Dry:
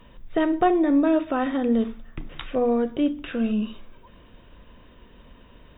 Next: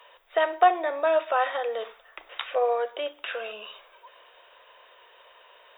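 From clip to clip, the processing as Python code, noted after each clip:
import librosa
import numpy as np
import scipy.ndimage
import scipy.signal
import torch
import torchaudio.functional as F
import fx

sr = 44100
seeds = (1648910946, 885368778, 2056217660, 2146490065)

y = scipy.signal.sosfilt(scipy.signal.cheby2(4, 40, 270.0, 'highpass', fs=sr, output='sos'), x)
y = y * 10.0 ** (4.0 / 20.0)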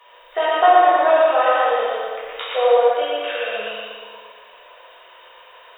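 y = fx.echo_feedback(x, sr, ms=117, feedback_pct=46, wet_db=-3)
y = fx.rev_plate(y, sr, seeds[0], rt60_s=1.7, hf_ratio=0.85, predelay_ms=0, drr_db=-7.0)
y = y * 10.0 ** (-1.0 / 20.0)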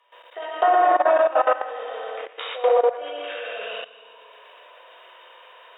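y = fx.level_steps(x, sr, step_db=16)
y = fx.brickwall_highpass(y, sr, low_hz=230.0)
y = fx.env_lowpass_down(y, sr, base_hz=2300.0, full_db=-18.5)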